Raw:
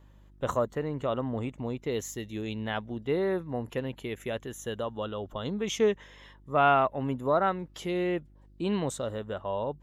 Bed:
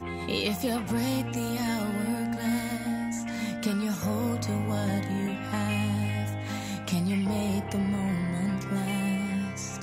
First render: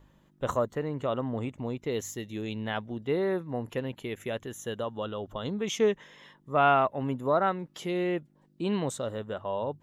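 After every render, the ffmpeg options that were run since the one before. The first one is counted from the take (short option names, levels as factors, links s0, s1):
-af "bandreject=f=50:t=h:w=4,bandreject=f=100:t=h:w=4"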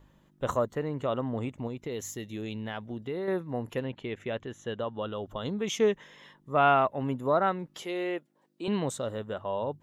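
-filter_complex "[0:a]asettb=1/sr,asplit=3[s0][s1][s2];[s0]atrim=end=1.674[s3];[s1]atrim=start=1.67:end=3.28,asetpts=PTS-STARTPTS,afade=t=in:d=0.004:c=qsin,afade=t=out:st=1.606:d=0.004:c=qsin,acompressor=threshold=0.0251:ratio=3:attack=3.2:release=140:knee=1:detection=peak[s4];[s2]atrim=start=3.276[s5];[s3][s4]acrossfade=d=0.004:c1=hsin:c2=qsin[s6];[s6][s5]acrossfade=d=0.004:c1=qsin:c2=hsin,asettb=1/sr,asplit=3[s7][s8][s9];[s7]atrim=end=3.844[s10];[s8]atrim=start=3.84:end=5.12,asetpts=PTS-STARTPTS,afade=t=in:d=0.004:c=qsin,afade=t=out:st=1.276:d=0.004:c=qsin,lowpass=4100[s11];[s9]atrim=start=5.116[s12];[s10][s11]acrossfade=d=0.004:c1=hsin:c2=qsin[s13];[s13][s12]acrossfade=d=0.004:c1=qsin:c2=hsin,asettb=1/sr,asplit=3[s14][s15][s16];[s14]atrim=end=7.824[s17];[s15]atrim=start=7.82:end=8.68,asetpts=PTS-STARTPTS,afade=t=in:d=0.004:c=qsin,afade=t=out:st=0.856:d=0.004:c=qsin,highpass=370[s18];[s16]atrim=start=8.676[s19];[s17][s18]acrossfade=d=0.004:c1=hsin:c2=qsin[s20];[s20][s19]acrossfade=d=0.004:c1=qsin:c2=hsin"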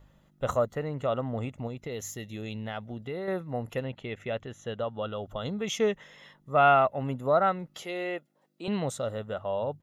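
-af "bandreject=f=7900:w=16,aecho=1:1:1.5:0.39"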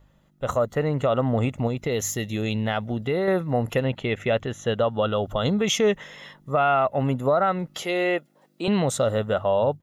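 -af "dynaudnorm=f=440:g=3:m=3.55,alimiter=limit=0.237:level=0:latency=1:release=85"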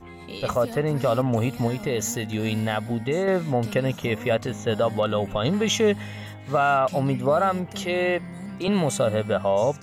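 -filter_complex "[1:a]volume=0.422[s0];[0:a][s0]amix=inputs=2:normalize=0"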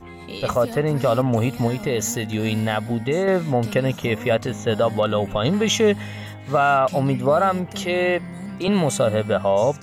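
-af "volume=1.41"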